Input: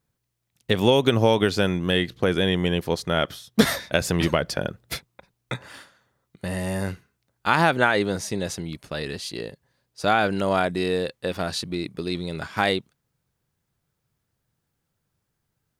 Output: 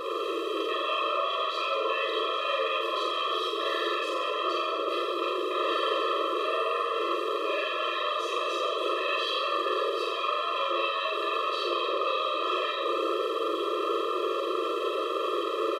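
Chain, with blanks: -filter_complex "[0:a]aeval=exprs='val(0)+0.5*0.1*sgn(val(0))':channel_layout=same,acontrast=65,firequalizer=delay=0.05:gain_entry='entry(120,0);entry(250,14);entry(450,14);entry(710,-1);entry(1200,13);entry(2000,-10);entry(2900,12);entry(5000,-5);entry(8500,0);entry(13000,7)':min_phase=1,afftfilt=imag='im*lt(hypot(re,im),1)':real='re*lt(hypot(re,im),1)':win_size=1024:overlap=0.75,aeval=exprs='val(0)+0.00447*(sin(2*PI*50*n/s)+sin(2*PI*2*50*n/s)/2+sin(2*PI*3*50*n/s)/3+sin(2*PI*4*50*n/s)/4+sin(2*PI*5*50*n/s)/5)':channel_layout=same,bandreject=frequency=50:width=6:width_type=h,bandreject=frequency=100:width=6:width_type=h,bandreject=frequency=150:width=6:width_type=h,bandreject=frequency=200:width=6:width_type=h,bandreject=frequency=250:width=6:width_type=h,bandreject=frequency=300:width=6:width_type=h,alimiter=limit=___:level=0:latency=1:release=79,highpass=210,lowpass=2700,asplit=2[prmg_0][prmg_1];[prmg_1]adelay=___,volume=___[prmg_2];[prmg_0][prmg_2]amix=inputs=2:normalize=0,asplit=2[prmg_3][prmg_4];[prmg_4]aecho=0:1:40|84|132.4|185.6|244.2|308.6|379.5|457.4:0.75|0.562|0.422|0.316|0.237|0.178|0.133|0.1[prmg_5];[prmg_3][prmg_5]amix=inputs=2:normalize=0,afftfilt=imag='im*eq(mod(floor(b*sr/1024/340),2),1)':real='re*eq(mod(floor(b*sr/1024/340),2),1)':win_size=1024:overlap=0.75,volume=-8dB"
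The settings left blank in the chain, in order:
-10dB, 49, -6dB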